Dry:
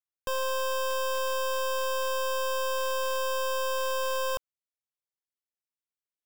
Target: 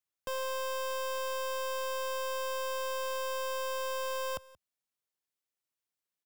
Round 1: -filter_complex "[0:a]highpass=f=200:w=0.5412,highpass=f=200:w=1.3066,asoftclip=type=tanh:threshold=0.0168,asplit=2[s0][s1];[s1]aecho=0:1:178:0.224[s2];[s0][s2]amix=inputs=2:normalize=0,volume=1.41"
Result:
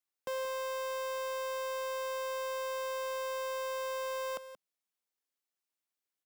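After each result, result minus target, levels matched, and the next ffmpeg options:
125 Hz band -12.0 dB; echo-to-direct +8.5 dB
-filter_complex "[0:a]highpass=f=72:w=0.5412,highpass=f=72:w=1.3066,asoftclip=type=tanh:threshold=0.0168,asplit=2[s0][s1];[s1]aecho=0:1:178:0.224[s2];[s0][s2]amix=inputs=2:normalize=0,volume=1.41"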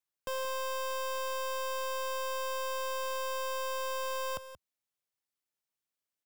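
echo-to-direct +8.5 dB
-filter_complex "[0:a]highpass=f=72:w=0.5412,highpass=f=72:w=1.3066,asoftclip=type=tanh:threshold=0.0168,asplit=2[s0][s1];[s1]aecho=0:1:178:0.0841[s2];[s0][s2]amix=inputs=2:normalize=0,volume=1.41"

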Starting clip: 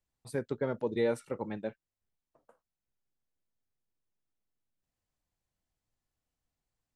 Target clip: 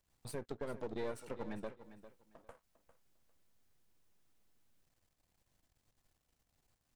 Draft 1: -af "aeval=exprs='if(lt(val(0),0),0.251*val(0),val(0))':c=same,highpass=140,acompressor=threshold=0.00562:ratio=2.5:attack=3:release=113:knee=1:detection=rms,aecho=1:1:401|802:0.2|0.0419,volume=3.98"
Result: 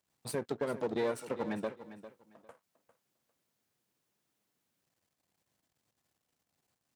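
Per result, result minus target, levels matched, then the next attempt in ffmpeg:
compression: peak gain reduction -8.5 dB; 125 Hz band -3.5 dB
-af "aeval=exprs='if(lt(val(0),0),0.251*val(0),val(0))':c=same,highpass=140,acompressor=threshold=0.00141:ratio=2.5:attack=3:release=113:knee=1:detection=rms,aecho=1:1:401|802:0.2|0.0419,volume=3.98"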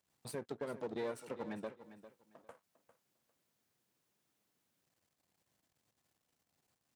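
125 Hz band -3.5 dB
-af "aeval=exprs='if(lt(val(0),0),0.251*val(0),val(0))':c=same,acompressor=threshold=0.00141:ratio=2.5:attack=3:release=113:knee=1:detection=rms,aecho=1:1:401|802:0.2|0.0419,volume=3.98"

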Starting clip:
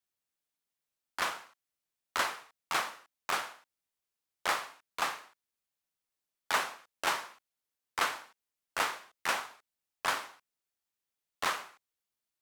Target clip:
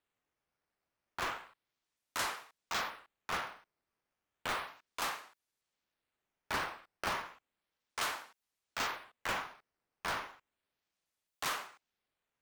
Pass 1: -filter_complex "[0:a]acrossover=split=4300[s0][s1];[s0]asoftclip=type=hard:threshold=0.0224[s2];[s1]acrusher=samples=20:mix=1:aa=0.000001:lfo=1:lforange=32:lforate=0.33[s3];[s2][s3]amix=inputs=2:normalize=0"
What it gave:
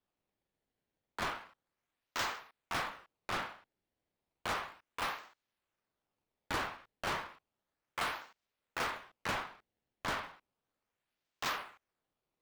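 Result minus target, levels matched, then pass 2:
decimation with a swept rate: distortion +16 dB
-filter_complex "[0:a]acrossover=split=4300[s0][s1];[s0]asoftclip=type=hard:threshold=0.0224[s2];[s1]acrusher=samples=7:mix=1:aa=0.000001:lfo=1:lforange=11.2:lforate=0.33[s3];[s2][s3]amix=inputs=2:normalize=0"

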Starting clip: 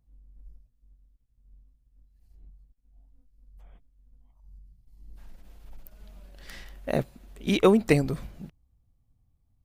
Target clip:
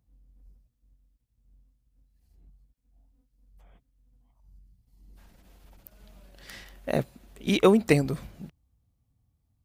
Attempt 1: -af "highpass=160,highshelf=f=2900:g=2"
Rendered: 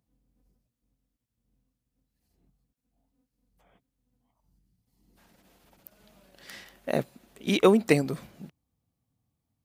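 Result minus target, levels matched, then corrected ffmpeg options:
125 Hz band -3.0 dB
-af "highpass=57,highshelf=f=2900:g=2"

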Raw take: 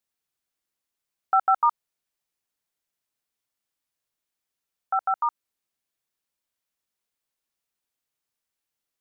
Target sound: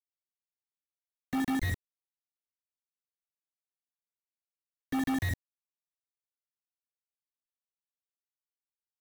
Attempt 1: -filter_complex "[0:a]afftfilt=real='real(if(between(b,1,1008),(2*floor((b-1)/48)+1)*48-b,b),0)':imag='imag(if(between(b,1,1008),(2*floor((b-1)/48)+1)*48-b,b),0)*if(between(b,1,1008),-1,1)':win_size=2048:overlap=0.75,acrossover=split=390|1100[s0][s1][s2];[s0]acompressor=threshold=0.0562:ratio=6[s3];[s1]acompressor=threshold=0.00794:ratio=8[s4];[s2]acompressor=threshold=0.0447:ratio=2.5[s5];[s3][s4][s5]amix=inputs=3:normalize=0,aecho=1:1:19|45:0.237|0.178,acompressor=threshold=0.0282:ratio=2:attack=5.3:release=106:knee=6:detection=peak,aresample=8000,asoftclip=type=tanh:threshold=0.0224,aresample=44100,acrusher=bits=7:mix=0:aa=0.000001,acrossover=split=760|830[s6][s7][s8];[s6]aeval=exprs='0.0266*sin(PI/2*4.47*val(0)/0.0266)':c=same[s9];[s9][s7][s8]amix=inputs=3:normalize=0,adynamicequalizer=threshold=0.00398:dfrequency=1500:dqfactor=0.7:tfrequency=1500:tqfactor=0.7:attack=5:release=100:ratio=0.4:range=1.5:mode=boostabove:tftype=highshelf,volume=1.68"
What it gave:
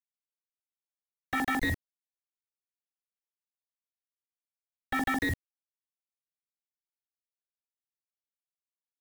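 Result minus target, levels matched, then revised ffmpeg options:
saturation: distortion -5 dB
-filter_complex "[0:a]afftfilt=real='real(if(between(b,1,1008),(2*floor((b-1)/48)+1)*48-b,b),0)':imag='imag(if(between(b,1,1008),(2*floor((b-1)/48)+1)*48-b,b),0)*if(between(b,1,1008),-1,1)':win_size=2048:overlap=0.75,acrossover=split=390|1100[s0][s1][s2];[s0]acompressor=threshold=0.0562:ratio=6[s3];[s1]acompressor=threshold=0.00794:ratio=8[s4];[s2]acompressor=threshold=0.0447:ratio=2.5[s5];[s3][s4][s5]amix=inputs=3:normalize=0,aecho=1:1:19|45:0.237|0.178,acompressor=threshold=0.0282:ratio=2:attack=5.3:release=106:knee=6:detection=peak,aresample=8000,asoftclip=type=tanh:threshold=0.00708,aresample=44100,acrusher=bits=7:mix=0:aa=0.000001,acrossover=split=760|830[s6][s7][s8];[s6]aeval=exprs='0.0266*sin(PI/2*4.47*val(0)/0.0266)':c=same[s9];[s9][s7][s8]amix=inputs=3:normalize=0,adynamicequalizer=threshold=0.00398:dfrequency=1500:dqfactor=0.7:tfrequency=1500:tqfactor=0.7:attack=5:release=100:ratio=0.4:range=1.5:mode=boostabove:tftype=highshelf,volume=1.68"

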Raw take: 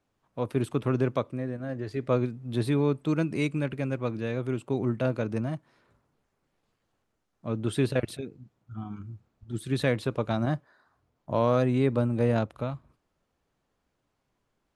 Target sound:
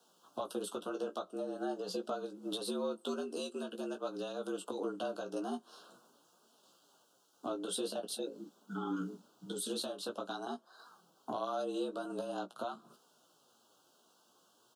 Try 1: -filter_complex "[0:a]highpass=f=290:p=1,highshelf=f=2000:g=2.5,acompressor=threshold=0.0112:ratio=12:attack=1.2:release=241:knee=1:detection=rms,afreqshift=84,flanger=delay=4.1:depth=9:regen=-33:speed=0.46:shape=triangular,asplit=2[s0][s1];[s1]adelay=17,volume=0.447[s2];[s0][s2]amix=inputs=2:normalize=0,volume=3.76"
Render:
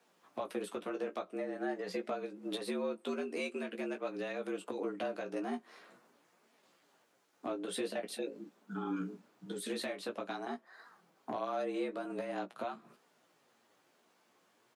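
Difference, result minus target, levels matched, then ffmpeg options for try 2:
2 kHz band +6.0 dB; 4 kHz band -3.5 dB
-filter_complex "[0:a]highpass=f=290:p=1,highshelf=f=2000:g=9.5,acompressor=threshold=0.0112:ratio=12:attack=1.2:release=241:knee=1:detection=rms,asuperstop=centerf=2000:order=8:qfactor=1.5,afreqshift=84,flanger=delay=4.1:depth=9:regen=-33:speed=0.46:shape=triangular,asplit=2[s0][s1];[s1]adelay=17,volume=0.447[s2];[s0][s2]amix=inputs=2:normalize=0,volume=3.76"

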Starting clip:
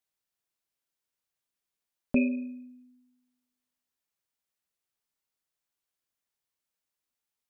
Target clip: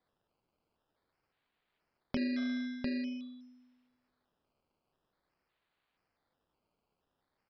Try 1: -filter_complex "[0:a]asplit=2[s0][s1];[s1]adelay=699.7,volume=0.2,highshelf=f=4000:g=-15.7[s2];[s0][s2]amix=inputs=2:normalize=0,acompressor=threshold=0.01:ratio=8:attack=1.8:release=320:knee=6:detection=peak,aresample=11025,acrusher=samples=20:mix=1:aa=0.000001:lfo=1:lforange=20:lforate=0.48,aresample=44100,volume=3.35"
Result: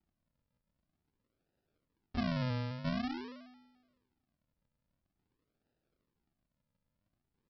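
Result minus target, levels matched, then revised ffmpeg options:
decimation with a swept rate: distortion +29 dB
-filter_complex "[0:a]asplit=2[s0][s1];[s1]adelay=699.7,volume=0.2,highshelf=f=4000:g=-15.7[s2];[s0][s2]amix=inputs=2:normalize=0,acompressor=threshold=0.01:ratio=8:attack=1.8:release=320:knee=6:detection=peak,aresample=11025,acrusher=samples=4:mix=1:aa=0.000001:lfo=1:lforange=4:lforate=0.48,aresample=44100,volume=3.35"

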